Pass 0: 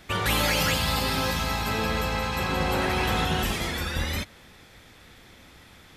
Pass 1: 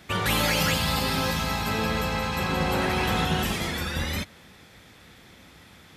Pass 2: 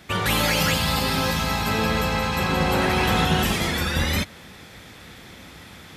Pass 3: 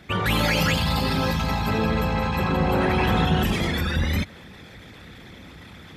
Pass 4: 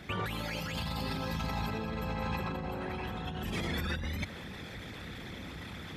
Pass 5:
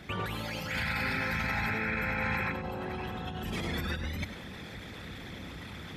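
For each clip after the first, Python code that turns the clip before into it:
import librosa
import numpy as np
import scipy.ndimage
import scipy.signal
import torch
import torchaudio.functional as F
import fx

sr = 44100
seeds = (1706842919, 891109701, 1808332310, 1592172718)

y1 = scipy.signal.sosfilt(scipy.signal.butter(2, 54.0, 'highpass', fs=sr, output='sos'), x)
y1 = fx.peak_eq(y1, sr, hz=180.0, db=3.5, octaves=0.65)
y2 = fx.rider(y1, sr, range_db=10, speed_s=2.0)
y2 = y2 * 10.0 ** (3.5 / 20.0)
y3 = fx.envelope_sharpen(y2, sr, power=1.5)
y4 = fx.over_compress(y3, sr, threshold_db=-29.0, ratio=-1.0)
y4 = y4 * 10.0 ** (-6.5 / 20.0)
y5 = fx.spec_paint(y4, sr, seeds[0], shape='noise', start_s=0.7, length_s=1.82, low_hz=1300.0, high_hz=2600.0, level_db=-35.0)
y5 = y5 + 10.0 ** (-11.0 / 20.0) * np.pad(y5, (int(100 * sr / 1000.0), 0))[:len(y5)]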